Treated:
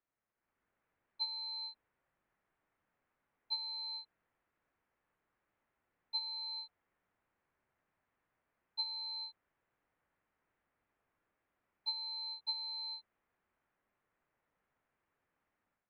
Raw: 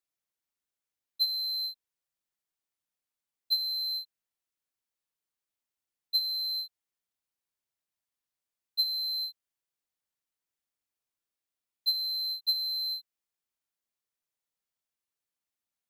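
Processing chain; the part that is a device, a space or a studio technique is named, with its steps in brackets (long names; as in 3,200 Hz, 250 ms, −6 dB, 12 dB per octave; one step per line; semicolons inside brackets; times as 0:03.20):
action camera in a waterproof case (low-pass filter 2,000 Hz 24 dB per octave; automatic gain control gain up to 10 dB; level +5.5 dB; AAC 48 kbit/s 48,000 Hz)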